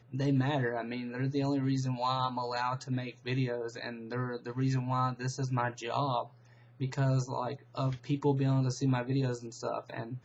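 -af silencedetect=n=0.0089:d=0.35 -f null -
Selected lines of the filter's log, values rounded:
silence_start: 6.26
silence_end: 6.80 | silence_duration: 0.55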